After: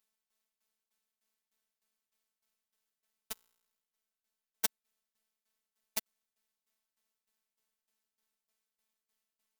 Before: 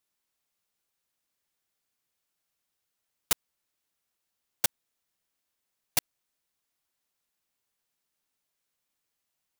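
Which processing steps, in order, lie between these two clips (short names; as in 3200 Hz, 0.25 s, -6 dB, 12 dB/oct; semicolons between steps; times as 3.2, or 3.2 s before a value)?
tremolo saw down 3.3 Hz, depth 85%; robotiser 219 Hz; 3.32–4.65 resonator 59 Hz, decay 1.1 s, harmonics all, mix 40%; gain +2 dB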